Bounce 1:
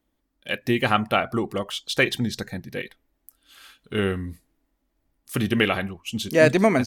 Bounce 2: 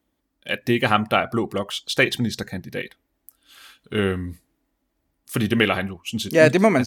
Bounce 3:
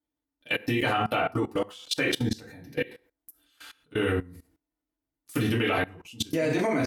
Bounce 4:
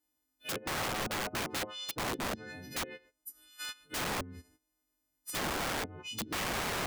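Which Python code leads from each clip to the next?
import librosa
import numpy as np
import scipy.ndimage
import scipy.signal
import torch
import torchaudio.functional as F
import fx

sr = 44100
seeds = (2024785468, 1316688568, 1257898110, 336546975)

y1 = scipy.signal.sosfilt(scipy.signal.butter(2, 51.0, 'highpass', fs=sr, output='sos'), x)
y1 = y1 * librosa.db_to_amplitude(2.0)
y2 = fx.rev_fdn(y1, sr, rt60_s=0.37, lf_ratio=0.85, hf_ratio=0.75, size_ms=20.0, drr_db=-4.5)
y2 = fx.level_steps(y2, sr, step_db=21)
y2 = y2 * librosa.db_to_amplitude(-4.0)
y3 = fx.freq_snap(y2, sr, grid_st=3)
y3 = fx.env_lowpass_down(y3, sr, base_hz=420.0, full_db=-21.5)
y3 = (np.mod(10.0 ** (29.5 / 20.0) * y3 + 1.0, 2.0) - 1.0) / 10.0 ** (29.5 / 20.0)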